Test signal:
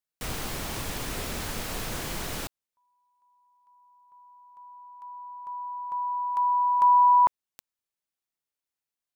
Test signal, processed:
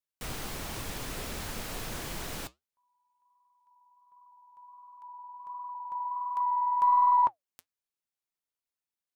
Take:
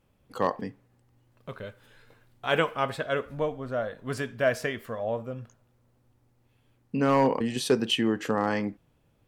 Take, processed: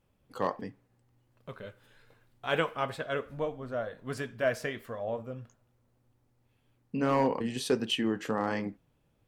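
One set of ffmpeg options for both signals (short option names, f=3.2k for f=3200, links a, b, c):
-af "aeval=exprs='0.299*(cos(1*acos(clip(val(0)/0.299,-1,1)))-cos(1*PI/2))+0.00188*(cos(4*acos(clip(val(0)/0.299,-1,1)))-cos(4*PI/2))':c=same,flanger=delay=0.9:depth=7.3:regen=-75:speed=1.4:shape=triangular"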